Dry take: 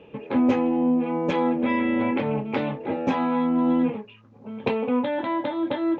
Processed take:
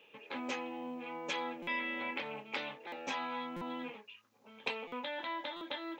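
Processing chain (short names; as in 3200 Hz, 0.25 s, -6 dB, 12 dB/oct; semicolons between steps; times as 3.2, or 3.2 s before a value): differentiator; stuck buffer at 1.62/2.87/3.56/4.87/5.56, samples 256, times 8; gain +5.5 dB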